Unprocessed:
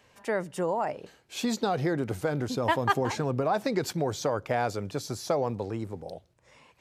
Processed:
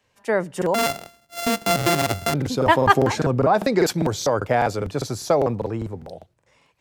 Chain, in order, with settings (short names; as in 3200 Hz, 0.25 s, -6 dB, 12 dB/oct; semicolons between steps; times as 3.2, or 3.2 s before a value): 0.74–2.34 sample sorter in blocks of 64 samples; crackling interface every 0.20 s, samples 2048, repeat, from 0.57; three-band expander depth 40%; gain +8 dB